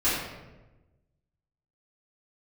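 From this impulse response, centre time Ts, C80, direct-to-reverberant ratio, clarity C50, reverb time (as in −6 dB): 71 ms, 3.0 dB, −13.5 dB, 0.5 dB, 1.1 s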